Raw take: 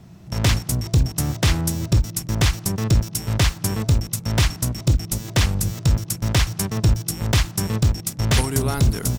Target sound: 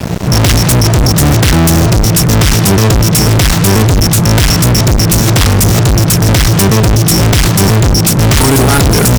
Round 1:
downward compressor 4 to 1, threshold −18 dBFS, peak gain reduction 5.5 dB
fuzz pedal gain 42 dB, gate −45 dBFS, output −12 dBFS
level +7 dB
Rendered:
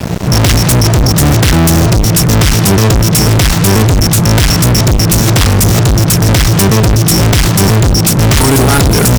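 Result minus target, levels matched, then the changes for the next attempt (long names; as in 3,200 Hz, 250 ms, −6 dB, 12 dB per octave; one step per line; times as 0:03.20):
downward compressor: peak gain reduction +5.5 dB
remove: downward compressor 4 to 1, threshold −18 dBFS, peak gain reduction 5.5 dB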